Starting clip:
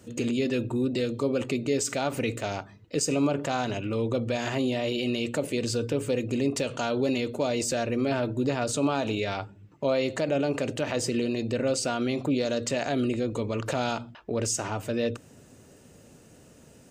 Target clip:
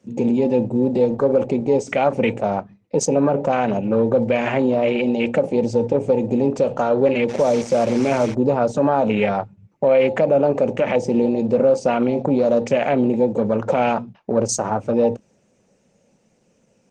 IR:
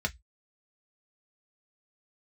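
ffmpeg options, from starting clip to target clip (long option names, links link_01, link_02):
-filter_complex "[0:a]afwtdn=0.02,flanger=delay=0.6:depth=4.6:regen=-86:speed=0.12:shape=triangular,asplit=3[link_01][link_02][link_03];[link_01]afade=type=out:start_time=7.28:duration=0.02[link_04];[link_02]acrusher=bits=8:dc=4:mix=0:aa=0.000001,afade=type=in:start_time=7.28:duration=0.02,afade=type=out:start_time=8.33:duration=0.02[link_05];[link_03]afade=type=in:start_time=8.33:duration=0.02[link_06];[link_04][link_05][link_06]amix=inputs=3:normalize=0,asettb=1/sr,asplit=3[link_07][link_08][link_09];[link_07]atrim=end=13.254[link_10];[link_08]atrim=start=13.25:end=13.9,asetpts=PTS-STARTPTS,afade=type=in:duration=0.004:curve=qsin,afade=type=out:start_time=0.646:duration=0.004:curve=qsin,aeval=exprs='0.1*(cos(1*acos(clip(val(0)/0.1,-1,1)))-cos(1*PI/2))+0.00251*(cos(3*acos(clip(val(0)/0.1,-1,1)))-cos(3*PI/2))':channel_layout=same[link_11];[link_09]atrim=start=13.896[link_12];[link_10][link_11]acrossfade=duration=0.004:curve1=hsin:curve2=qsin[link_13];[link_13][link_12]acrossfade=duration=0.004:curve1=qsin:curve2=hsin,highpass=120,equalizer=frequency=200:width_type=q:width=4:gain=10,equalizer=frequency=300:width_type=q:width=4:gain=-4,equalizer=frequency=530:width_type=q:width=4:gain=8,equalizer=frequency=830:width_type=q:width=4:gain=7,equalizer=frequency=2300:width_type=q:width=4:gain=8,equalizer=frequency=5900:width_type=q:width=4:gain=8,lowpass=frequency=8000:width=0.5412,lowpass=frequency=8000:width=1.3066,asplit=3[link_14][link_15][link_16];[link_14]afade=type=out:start_time=2.4:duration=0.02[link_17];[link_15]adynamicsmooth=sensitivity=4.5:basefreq=5400,afade=type=in:start_time=2.4:duration=0.02,afade=type=out:start_time=3.34:duration=0.02[link_18];[link_16]afade=type=in:start_time=3.34:duration=0.02[link_19];[link_17][link_18][link_19]amix=inputs=3:normalize=0,alimiter=level_in=18dB:limit=-1dB:release=50:level=0:latency=1,volume=-6.5dB" -ar 48000 -c:a libopus -b:a 20k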